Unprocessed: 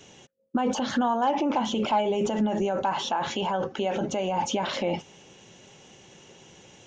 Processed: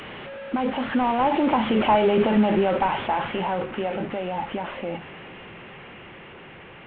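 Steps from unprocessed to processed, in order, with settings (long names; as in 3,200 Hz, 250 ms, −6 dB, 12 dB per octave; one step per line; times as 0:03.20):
linear delta modulator 16 kbit/s, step −30 dBFS
source passing by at 0:02.15, 8 m/s, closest 7.3 metres
level +6.5 dB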